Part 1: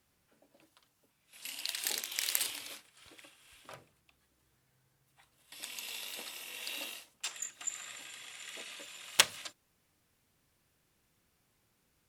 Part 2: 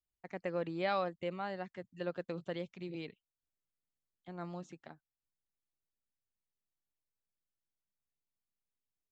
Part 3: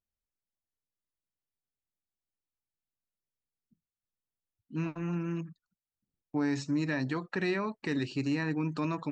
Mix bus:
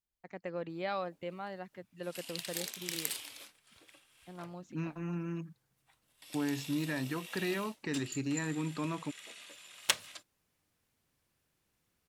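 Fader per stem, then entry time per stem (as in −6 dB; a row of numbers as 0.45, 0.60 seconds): −4.5, −2.5, −4.0 decibels; 0.70, 0.00, 0.00 seconds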